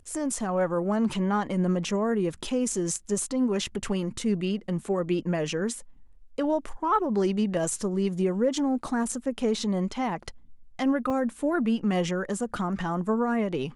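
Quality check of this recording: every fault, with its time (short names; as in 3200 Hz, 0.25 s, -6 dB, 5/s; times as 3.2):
11.1 gap 2.8 ms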